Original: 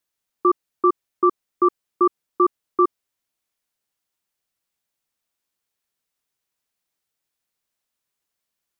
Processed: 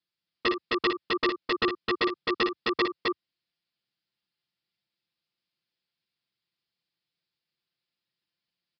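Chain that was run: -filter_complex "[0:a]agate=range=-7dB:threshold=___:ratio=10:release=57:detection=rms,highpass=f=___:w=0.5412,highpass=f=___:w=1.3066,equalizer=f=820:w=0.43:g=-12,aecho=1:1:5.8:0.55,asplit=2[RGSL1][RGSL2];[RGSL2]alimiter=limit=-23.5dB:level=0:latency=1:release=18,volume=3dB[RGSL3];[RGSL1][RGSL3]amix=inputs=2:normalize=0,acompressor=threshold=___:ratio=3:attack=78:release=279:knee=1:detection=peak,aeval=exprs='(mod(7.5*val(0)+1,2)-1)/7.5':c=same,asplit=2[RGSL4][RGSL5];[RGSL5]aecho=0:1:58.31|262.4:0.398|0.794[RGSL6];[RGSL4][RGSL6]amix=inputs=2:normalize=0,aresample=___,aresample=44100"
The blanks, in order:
-21dB, 80, 80, -29dB, 11025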